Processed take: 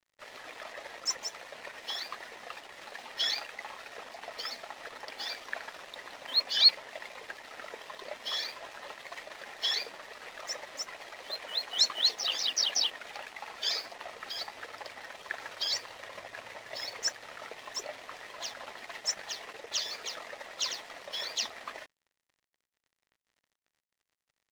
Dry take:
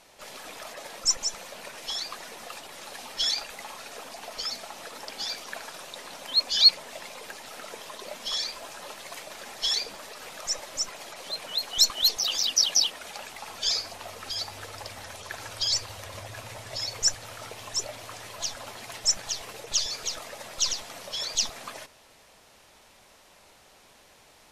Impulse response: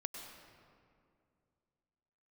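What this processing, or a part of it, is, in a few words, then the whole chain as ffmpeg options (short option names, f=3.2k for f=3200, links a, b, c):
pocket radio on a weak battery: -af "highpass=300,lowpass=3.9k,aeval=exprs='sgn(val(0))*max(abs(val(0))-0.00299,0)':c=same,equalizer=f=1.9k:t=o:w=0.25:g=7"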